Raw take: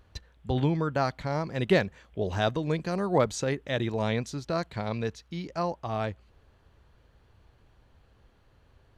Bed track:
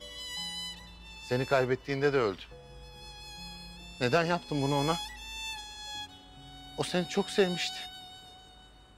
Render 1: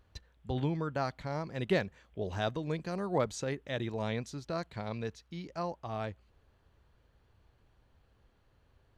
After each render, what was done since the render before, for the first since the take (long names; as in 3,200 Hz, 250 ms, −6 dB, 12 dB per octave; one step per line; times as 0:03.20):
level −6.5 dB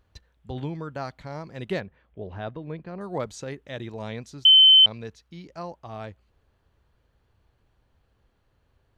0:01.80–0:03.01: high-frequency loss of the air 350 metres
0:04.45–0:04.86: beep over 3,070 Hz −10 dBFS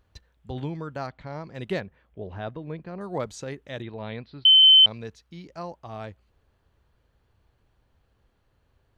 0:01.06–0:01.53: low-pass filter 2,900 Hz → 5,900 Hz
0:03.82–0:04.63: elliptic low-pass filter 4,300 Hz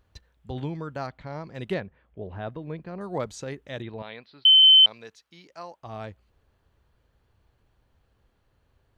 0:01.74–0:02.49: high-frequency loss of the air 150 metres
0:04.02–0:05.83: high-pass filter 790 Hz 6 dB per octave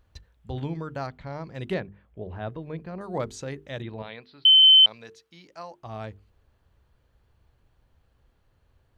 low-shelf EQ 120 Hz +5 dB
mains-hum notches 50/100/150/200/250/300/350/400/450 Hz